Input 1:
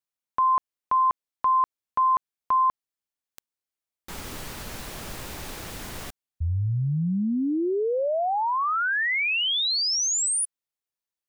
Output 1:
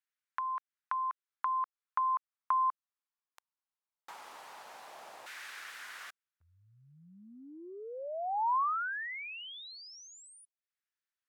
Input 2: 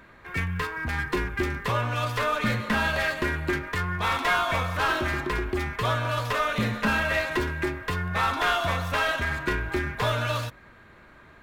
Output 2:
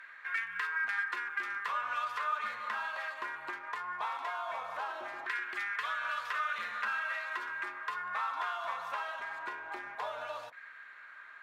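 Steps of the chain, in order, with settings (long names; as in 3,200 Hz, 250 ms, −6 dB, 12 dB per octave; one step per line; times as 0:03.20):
spectral tilt +4 dB per octave
downward compressor, threshold −30 dBFS
auto-filter band-pass saw down 0.19 Hz 740–1,700 Hz
level +2.5 dB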